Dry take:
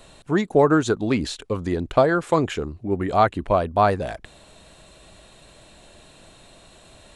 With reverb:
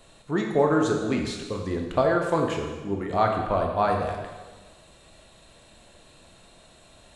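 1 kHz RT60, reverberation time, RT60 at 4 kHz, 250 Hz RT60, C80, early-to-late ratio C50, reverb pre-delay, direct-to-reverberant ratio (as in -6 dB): 1.3 s, 1.3 s, 1.3 s, 1.5 s, 6.0 dB, 4.5 dB, 6 ms, 1.5 dB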